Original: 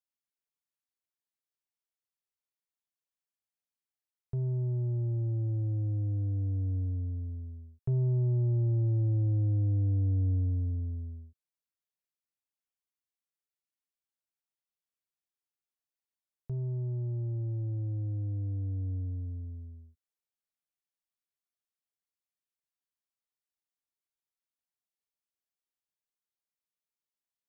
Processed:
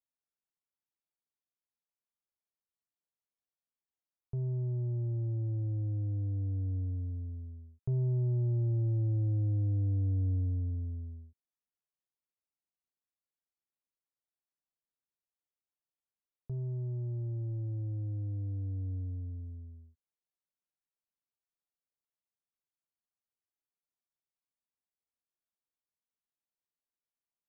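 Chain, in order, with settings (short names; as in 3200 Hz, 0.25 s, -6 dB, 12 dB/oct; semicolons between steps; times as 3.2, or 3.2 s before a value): LPF 1200 Hz 12 dB/oct; gain -2.5 dB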